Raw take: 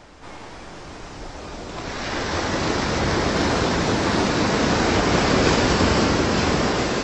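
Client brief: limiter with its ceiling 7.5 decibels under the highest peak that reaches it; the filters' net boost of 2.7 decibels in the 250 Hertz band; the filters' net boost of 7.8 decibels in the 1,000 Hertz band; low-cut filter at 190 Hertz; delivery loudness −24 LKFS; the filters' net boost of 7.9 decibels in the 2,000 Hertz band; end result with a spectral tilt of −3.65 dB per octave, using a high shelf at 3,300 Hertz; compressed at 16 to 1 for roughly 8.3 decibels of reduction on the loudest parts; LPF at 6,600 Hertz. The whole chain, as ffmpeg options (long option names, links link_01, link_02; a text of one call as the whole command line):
ffmpeg -i in.wav -af "highpass=190,lowpass=6600,equalizer=frequency=250:width_type=o:gain=4.5,equalizer=frequency=1000:width_type=o:gain=7.5,equalizer=frequency=2000:width_type=o:gain=6.5,highshelf=frequency=3300:gain=3,acompressor=threshold=-18dB:ratio=16,volume=2dB,alimiter=limit=-15dB:level=0:latency=1" out.wav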